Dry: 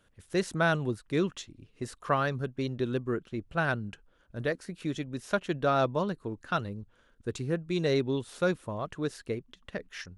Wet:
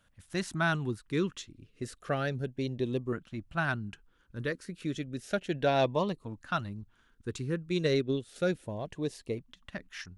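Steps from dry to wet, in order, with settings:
0:05.52–0:06.13: parametric band 2,000 Hz +8 dB 2.4 octaves
0:07.69–0:08.36: transient designer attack +6 dB, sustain −5 dB
auto-filter notch saw up 0.32 Hz 380–1,600 Hz
level −1 dB

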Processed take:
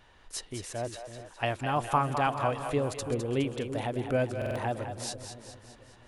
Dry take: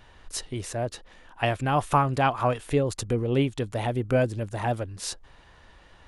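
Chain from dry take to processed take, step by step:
low-shelf EQ 150 Hz −5 dB
on a send: echo with a time of its own for lows and highs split 490 Hz, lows 333 ms, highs 207 ms, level −8 dB
on the sum: buffer that repeats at 0:04.37, samples 2,048, times 3
level −4.5 dB

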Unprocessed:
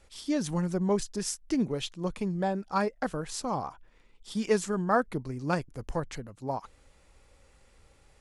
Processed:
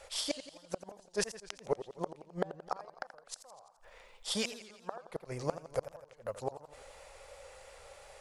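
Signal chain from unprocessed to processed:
low shelf with overshoot 400 Hz −11.5 dB, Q 3
gate with flip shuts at −28 dBFS, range −36 dB
feedback echo with a swinging delay time 85 ms, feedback 60%, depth 157 cents, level −13 dB
level +8.5 dB

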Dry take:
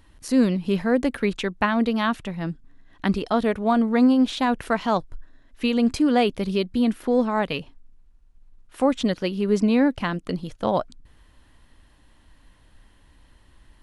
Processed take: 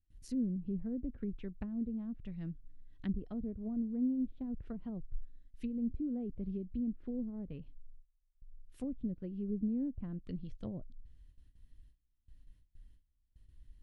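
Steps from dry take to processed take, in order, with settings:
treble cut that deepens with the level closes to 440 Hz, closed at −18.5 dBFS
noise gate with hold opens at −44 dBFS
guitar amp tone stack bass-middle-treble 10-0-1
level +3 dB

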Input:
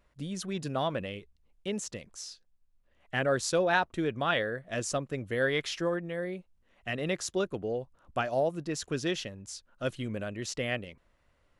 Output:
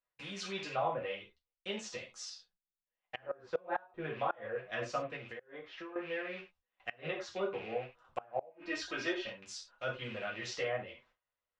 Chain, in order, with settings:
loose part that buzzes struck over −44 dBFS, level −36 dBFS
three-way crossover with the lows and the highs turned down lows −19 dB, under 470 Hz, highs −18 dB, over 6,500 Hz
treble cut that deepens with the level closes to 940 Hz, closed at −30 dBFS
0:08.51–0:09.27: comb filter 3.2 ms, depth 78%
reverb whose tail is shaped and stops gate 120 ms falling, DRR −1.5 dB
flanger 0.99 Hz, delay 7.6 ms, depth 3.1 ms, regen −11%
noise gate with hold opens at −55 dBFS
parametric band 130 Hz +5.5 dB 1.1 octaves
gate with flip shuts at −23 dBFS, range −26 dB
0:02.30–0:03.32: amplitude modulation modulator 180 Hz, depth 25%
0:05.16–0:05.96: downward compressor 8 to 1, threshold −45 dBFS, peak gain reduction 14.5 dB
level +1 dB

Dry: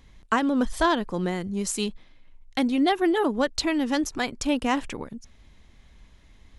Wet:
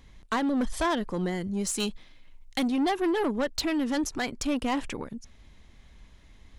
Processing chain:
0:01.80–0:02.69: high-shelf EQ 2,400 Hz +7 dB
soft clipping −21.5 dBFS, distortion −11 dB

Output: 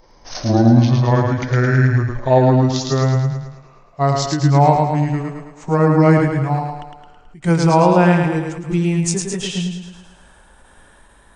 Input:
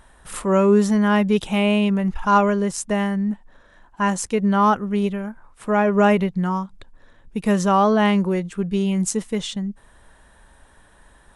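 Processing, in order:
pitch glide at a constant tempo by −10 semitones ending unshifted
feedback echo with a high-pass in the loop 108 ms, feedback 55%, high-pass 160 Hz, level −3.5 dB
every ending faded ahead of time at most 120 dB per second
level +4 dB

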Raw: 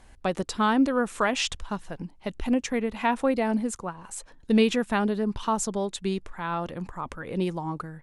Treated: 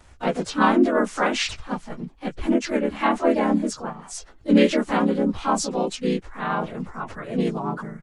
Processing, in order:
partials spread apart or drawn together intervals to 92%
pitch-shifted copies added −3 semitones −6 dB, +3 semitones −6 dB, +5 semitones 0 dB
level +1.5 dB

